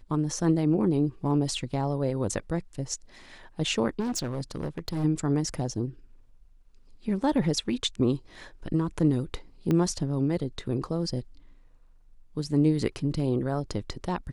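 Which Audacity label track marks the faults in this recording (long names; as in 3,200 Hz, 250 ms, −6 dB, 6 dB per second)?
3.990000	5.050000	clipping −26.5 dBFS
9.710000	9.710000	click −15 dBFS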